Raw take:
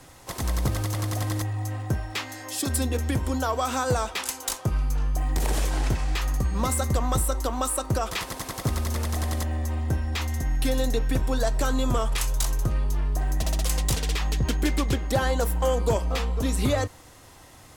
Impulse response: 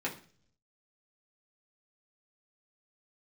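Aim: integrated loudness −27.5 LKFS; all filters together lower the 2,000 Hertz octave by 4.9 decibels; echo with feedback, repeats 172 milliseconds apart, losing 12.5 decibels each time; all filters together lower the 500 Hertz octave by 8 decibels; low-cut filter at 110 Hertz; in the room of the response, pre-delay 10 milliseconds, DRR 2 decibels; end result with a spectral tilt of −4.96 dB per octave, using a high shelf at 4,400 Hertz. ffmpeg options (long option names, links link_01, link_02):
-filter_complex "[0:a]highpass=110,equalizer=frequency=500:width_type=o:gain=-9,equalizer=frequency=2000:width_type=o:gain=-4.5,highshelf=frequency=4400:gain=-6,aecho=1:1:172|344|516:0.237|0.0569|0.0137,asplit=2[link_01][link_02];[1:a]atrim=start_sample=2205,adelay=10[link_03];[link_02][link_03]afir=irnorm=-1:irlink=0,volume=-7dB[link_04];[link_01][link_04]amix=inputs=2:normalize=0,volume=2.5dB"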